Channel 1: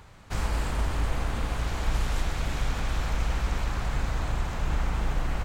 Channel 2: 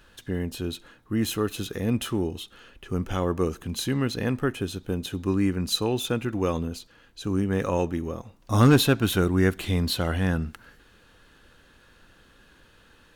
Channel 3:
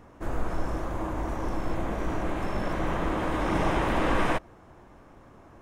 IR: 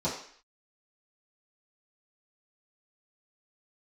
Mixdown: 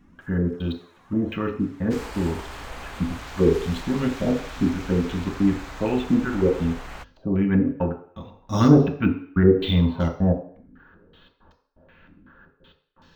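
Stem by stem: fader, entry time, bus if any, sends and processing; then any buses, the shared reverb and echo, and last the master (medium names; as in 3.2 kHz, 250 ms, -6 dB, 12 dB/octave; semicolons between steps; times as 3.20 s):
-0.5 dB, 1.60 s, no send, bass shelf 390 Hz -12 dB
-3.0 dB, 0.00 s, send -9 dB, trance gate "xxxx.x..xx" 125 bpm -60 dB; step-sequenced low-pass 5.3 Hz 270–5400 Hz
-1.5 dB, 0.00 s, no send, compression 2.5:1, threshold -40 dBFS, peak gain reduction 13.5 dB; high-pass 1.4 kHz 12 dB/octave; cancelling through-zero flanger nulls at 0.97 Hz, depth 3.4 ms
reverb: on, RT60 0.55 s, pre-delay 3 ms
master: hum notches 50/100/150 Hz; decimation joined by straight lines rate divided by 2×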